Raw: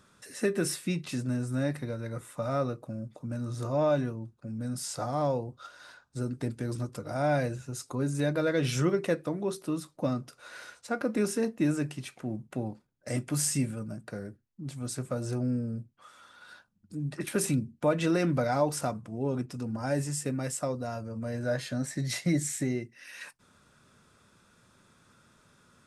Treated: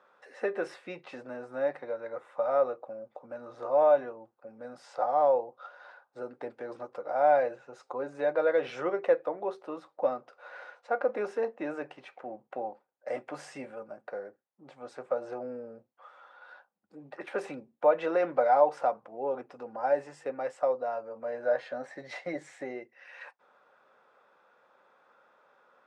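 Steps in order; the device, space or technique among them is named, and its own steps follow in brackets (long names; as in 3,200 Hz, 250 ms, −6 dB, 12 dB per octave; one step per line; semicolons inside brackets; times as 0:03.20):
tin-can telephone (band-pass filter 610–2,000 Hz; hollow resonant body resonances 530/770 Hz, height 11 dB, ringing for 20 ms)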